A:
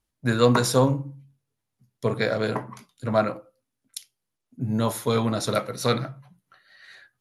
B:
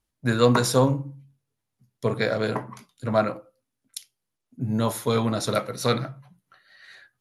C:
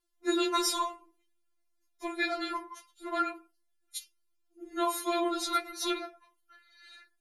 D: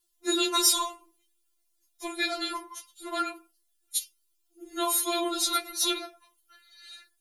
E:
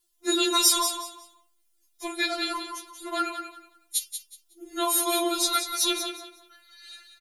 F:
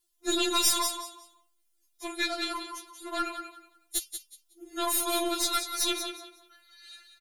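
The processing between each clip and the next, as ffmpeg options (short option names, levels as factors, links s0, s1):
-af anull
-af "afftfilt=real='re*4*eq(mod(b,16),0)':imag='im*4*eq(mod(b,16),0)':win_size=2048:overlap=0.75"
-af "aexciter=amount=1.9:drive=8:freq=2800"
-af "aecho=1:1:184|368|552:0.376|0.0864|0.0199,volume=1.26"
-af "aeval=exprs='(tanh(7.08*val(0)+0.65)-tanh(0.65))/7.08':c=same"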